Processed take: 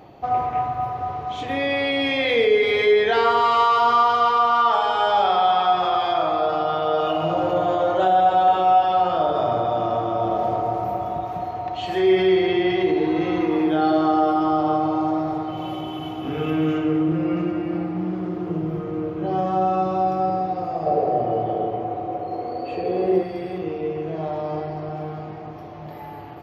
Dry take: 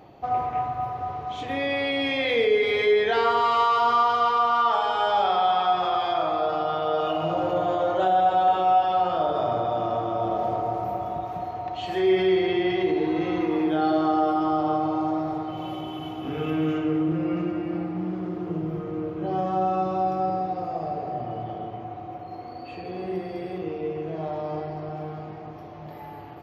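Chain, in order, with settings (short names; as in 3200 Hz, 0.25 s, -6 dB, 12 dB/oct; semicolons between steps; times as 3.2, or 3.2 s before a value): 20.86–23.23 bell 480 Hz +12.5 dB 1 oct; gain +3.5 dB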